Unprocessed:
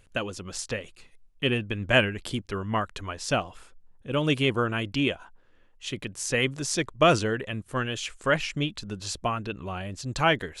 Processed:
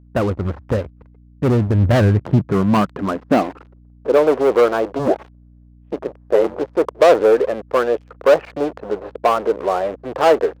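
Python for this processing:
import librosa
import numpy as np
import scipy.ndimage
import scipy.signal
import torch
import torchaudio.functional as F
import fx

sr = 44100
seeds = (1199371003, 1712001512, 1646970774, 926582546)

y = scipy.signal.sosfilt(scipy.signal.butter(4, 1200.0, 'lowpass', fs=sr, output='sos'), x)
y = fx.leveller(y, sr, passes=5)
y = fx.filter_sweep_highpass(y, sr, from_hz=72.0, to_hz=480.0, start_s=1.62, end_s=4.23, q=2.8)
y = fx.ring_mod(y, sr, carrier_hz=fx.line((4.98, 150.0), (6.59, 43.0)), at=(4.98, 6.59), fade=0.02)
y = fx.add_hum(y, sr, base_hz=60, snr_db=29)
y = F.gain(torch.from_numpy(y), -3.0).numpy()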